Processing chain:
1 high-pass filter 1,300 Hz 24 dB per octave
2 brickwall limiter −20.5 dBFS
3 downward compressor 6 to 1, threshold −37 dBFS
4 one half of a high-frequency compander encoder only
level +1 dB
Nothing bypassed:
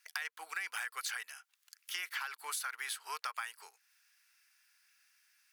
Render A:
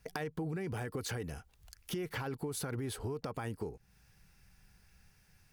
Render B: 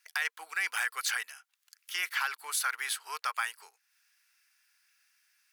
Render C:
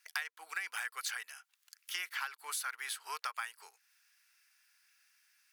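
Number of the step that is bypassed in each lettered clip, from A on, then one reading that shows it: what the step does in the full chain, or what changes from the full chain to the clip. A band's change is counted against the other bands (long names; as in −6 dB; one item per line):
1, 500 Hz band +25.5 dB
3, average gain reduction 5.0 dB
2, change in momentary loudness spread −2 LU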